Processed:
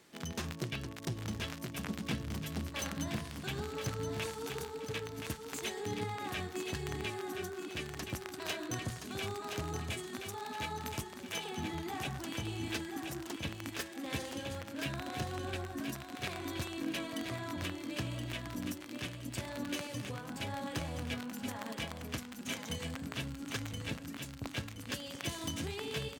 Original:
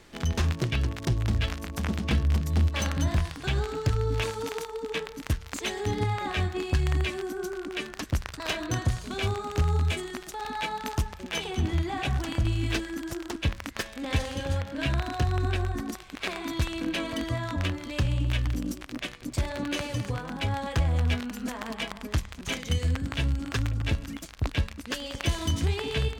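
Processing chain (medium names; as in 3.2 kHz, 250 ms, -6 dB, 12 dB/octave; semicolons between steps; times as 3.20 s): Chebyshev high-pass 160 Hz, order 2; treble shelf 8.2 kHz +9.5 dB; feedback delay 1023 ms, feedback 34%, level -6 dB; trim -8 dB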